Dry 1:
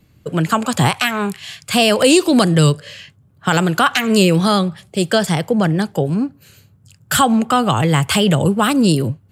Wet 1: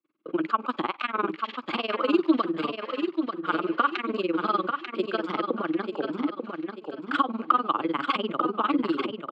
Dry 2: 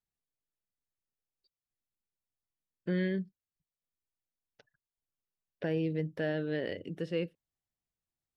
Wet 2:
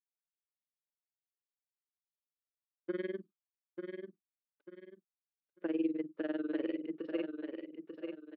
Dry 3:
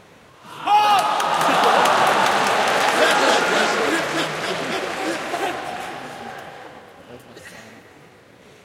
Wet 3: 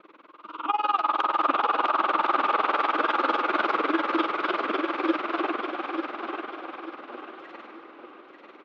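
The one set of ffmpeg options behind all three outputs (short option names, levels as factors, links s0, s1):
-filter_complex "[0:a]acompressor=threshold=0.126:ratio=6,tremolo=f=20:d=0.95,highpass=f=290:w=0.5412,highpass=f=290:w=1.3066,equalizer=f=320:t=q:w=4:g=9,equalizer=f=460:t=q:w=4:g=-4,equalizer=f=720:t=q:w=4:g=-8,equalizer=f=1200:t=q:w=4:g=9,equalizer=f=1800:t=q:w=4:g=-8,equalizer=f=2900:t=q:w=4:g=-3,lowpass=f=3100:w=0.5412,lowpass=f=3100:w=1.3066,asplit=2[s0][s1];[s1]aecho=0:1:891|1782|2673|3564:0.501|0.175|0.0614|0.0215[s2];[s0][s2]amix=inputs=2:normalize=0,agate=range=0.0224:threshold=0.00224:ratio=3:detection=peak"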